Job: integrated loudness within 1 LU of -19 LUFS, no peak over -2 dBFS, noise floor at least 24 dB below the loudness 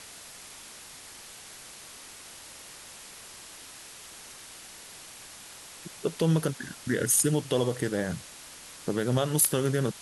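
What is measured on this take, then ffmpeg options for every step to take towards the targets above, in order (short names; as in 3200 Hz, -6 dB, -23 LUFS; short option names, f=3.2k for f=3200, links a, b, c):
noise floor -47 dBFS; noise floor target -51 dBFS; loudness -27.0 LUFS; peak -10.5 dBFS; loudness target -19.0 LUFS
-> -af "afftdn=nr=6:nf=-47"
-af "volume=8dB"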